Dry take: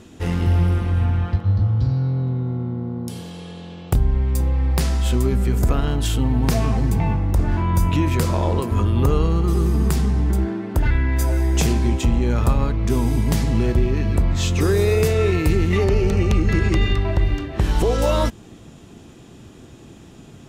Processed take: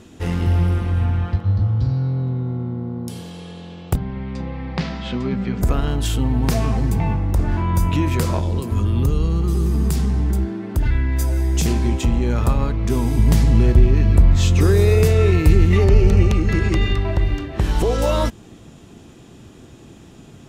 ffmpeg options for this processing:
-filter_complex "[0:a]asplit=3[a][b][c];[a]afade=t=out:st=3.95:d=0.02[d];[b]highpass=140,equalizer=f=180:t=q:w=4:g=8,equalizer=f=370:t=q:w=4:g=-5,equalizer=f=2.1k:t=q:w=4:g=3,lowpass=f=4.5k:w=0.5412,lowpass=f=4.5k:w=1.3066,afade=t=in:st=3.95:d=0.02,afade=t=out:st=5.61:d=0.02[e];[c]afade=t=in:st=5.61:d=0.02[f];[d][e][f]amix=inputs=3:normalize=0,asettb=1/sr,asplit=3[g][h][i];[g]atrim=end=8.394[j];[h]atrim=start=8.39:end=11.66,asetpts=PTS-STARTPTS,afade=t=in:d=0.004:c=qsin,afade=t=out:st=3.266:d=0.004:c=qsin,acrossover=split=320|3000[k][l][m];[l]acompressor=threshold=-32dB:ratio=6:attack=3.2:release=140:knee=2.83:detection=peak[n];[k][n][m]amix=inputs=3:normalize=0[o];[i]atrim=start=11.656[p];[j][o]acrossfade=d=0.004:c1=hsin:c2=qsin[q];[q][p]acrossfade=d=0.004:c1=qsin:c2=hsin,asettb=1/sr,asplit=3[r][s][t];[r]atrim=end=13.194[u];[s]atrim=start=13.19:end=16.28,asetpts=PTS-STARTPTS,afade=t=in:d=0.004:c=qsin,afade=t=out:st=3.086:d=0.004:c=qsin,lowshelf=f=120:g=8.5[v];[t]atrim=start=16.276[w];[u][v]acrossfade=d=0.004:c1=hsin:c2=qsin[x];[x][w]acrossfade=d=0.004:c1=qsin:c2=hsin"

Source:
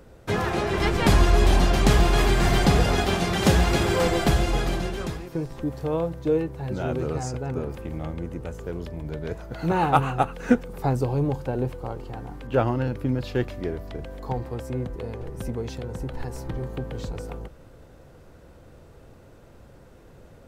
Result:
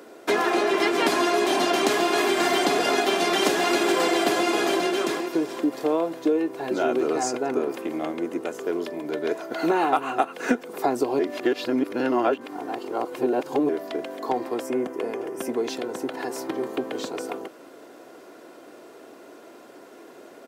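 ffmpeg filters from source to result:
-filter_complex "[0:a]asplit=2[a][b];[b]afade=t=in:st=3.48:d=0.01,afade=t=out:st=4:d=0.01,aecho=0:1:400|800|1200|1600|2000|2400|2800:0.421697|0.231933|0.127563|0.0701598|0.0385879|0.0212233|0.0116728[c];[a][c]amix=inputs=2:normalize=0,asettb=1/sr,asplit=3[d][e][f];[d]atrim=end=14.644[g];[e]atrim=start=14.64:end=15.5,asetpts=PTS-STARTPTS,afade=t=in:d=0.004:c=qsin,afade=t=out:st=0.856:d=0.004:c=qsin,equalizer=f=4k:w=5.2:g=-11[h];[f]atrim=start=15.496[i];[g][h]acrossfade=d=0.004:c1=hsin:c2=qsin[j];[j][i]acrossfade=d=0.004:c1=qsin:c2=hsin,asplit=3[k][l][m];[k]atrim=end=11.192[n];[l]atrim=start=11.188:end=13.692,asetpts=PTS-STARTPTS,areverse[o];[m]atrim=start=13.688[p];[n][o]acrossfade=d=0.004:c1=hsin:c2=hsin[q];[q][p]acrossfade=d=0.004:c1=hsin:c2=hsin,highpass=f=260:w=0.5412,highpass=f=260:w=1.3066,aecho=1:1:2.9:0.42,acompressor=threshold=-26dB:ratio=6,volume=7.5dB"

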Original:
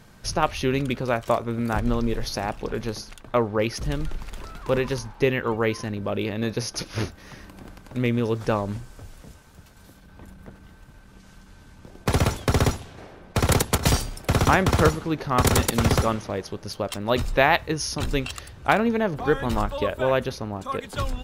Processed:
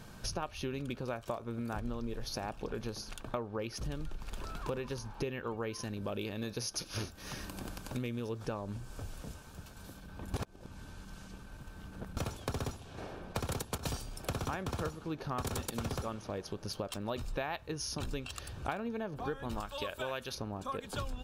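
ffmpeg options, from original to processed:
-filter_complex "[0:a]asettb=1/sr,asplit=3[a][b][c];[a]atrim=end=5.734[d];[b]atrim=start=5.73:end=8.29,asetpts=PTS-STARTPTS,afade=t=in:d=0.004:c=qsin,afade=t=out:st=2.556:d=0.004:c=qsin,highshelf=f=3.5k:g=8[e];[c]atrim=start=8.286[f];[d][e]acrossfade=d=0.004:c1=hsin:c2=qsin[g];[g][f]acrossfade=d=0.004:c1=qsin:c2=hsin,asettb=1/sr,asplit=3[h][i][j];[h]atrim=end=19.604[k];[i]atrim=start=19.6:end=20.35,asetpts=PTS-STARTPTS,afade=t=in:d=0.004:c=qsin,afade=t=out:st=0.746:d=0.004:c=qsin,tiltshelf=f=1.2k:g=-7[l];[j]atrim=start=20.346[m];[k][l]acrossfade=d=0.004:c1=hsin:c2=qsin[n];[n][m]acrossfade=d=0.004:c1=qsin:c2=hsin,asplit=3[o][p][q];[o]atrim=end=10.342[r];[p]atrim=start=10.338:end=12.172,asetpts=PTS-STARTPTS,areverse[s];[q]atrim=start=12.168[t];[r][s]acrossfade=d=0.004:c1=hsin:c2=hsin[u];[u][t]acrossfade=d=0.004:c1=hsin:c2=hsin,bandreject=f=2k:w=6.2,acompressor=threshold=-36dB:ratio=5"

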